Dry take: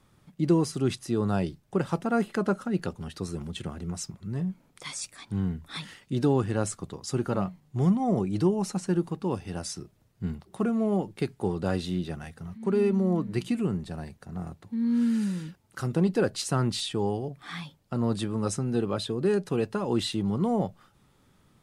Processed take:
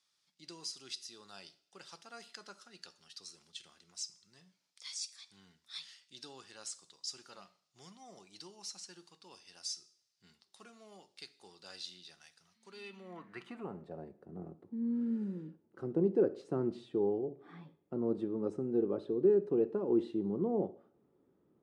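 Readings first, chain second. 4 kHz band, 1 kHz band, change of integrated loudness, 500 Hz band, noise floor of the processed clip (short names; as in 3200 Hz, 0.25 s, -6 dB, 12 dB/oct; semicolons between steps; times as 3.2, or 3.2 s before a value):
-8.0 dB, -16.5 dB, -7.5 dB, -6.0 dB, -79 dBFS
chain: band-pass sweep 5000 Hz -> 370 Hz, 12.68–14.1; two-slope reverb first 0.53 s, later 1.6 s, from -26 dB, DRR 12 dB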